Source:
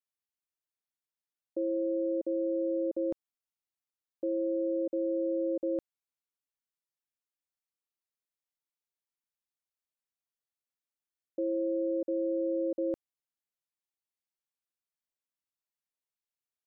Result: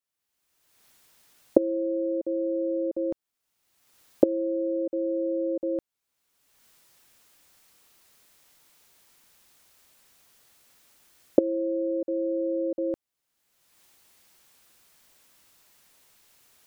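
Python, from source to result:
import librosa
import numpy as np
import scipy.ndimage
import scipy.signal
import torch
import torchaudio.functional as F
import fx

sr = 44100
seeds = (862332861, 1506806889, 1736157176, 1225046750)

y = fx.recorder_agc(x, sr, target_db=-29.5, rise_db_per_s=35.0, max_gain_db=30)
y = y * librosa.db_to_amplitude(3.0)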